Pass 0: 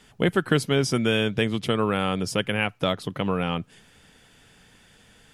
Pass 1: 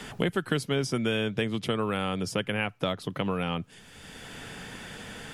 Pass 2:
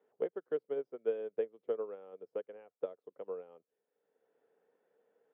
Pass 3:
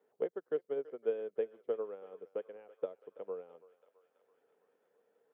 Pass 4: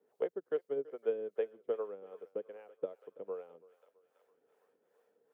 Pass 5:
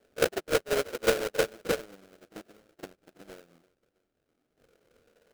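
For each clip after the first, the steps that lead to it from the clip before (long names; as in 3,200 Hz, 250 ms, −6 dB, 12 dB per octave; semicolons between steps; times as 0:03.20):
multiband upward and downward compressor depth 70%; level −5 dB
four-pole ladder band-pass 510 Hz, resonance 65%; expander for the loud parts 2.5 to 1, over −45 dBFS; level +3 dB
feedback echo with a high-pass in the loop 331 ms, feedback 77%, high-pass 650 Hz, level −16.5 dB
two-band tremolo in antiphase 2.5 Hz, depth 70%, crossover 450 Hz; level +4 dB
gain on a spectral selection 0:01.79–0:04.58, 380–2,700 Hz −18 dB; sample-rate reduction 1,000 Hz, jitter 20%; echo ahead of the sound 41 ms −15 dB; level +7.5 dB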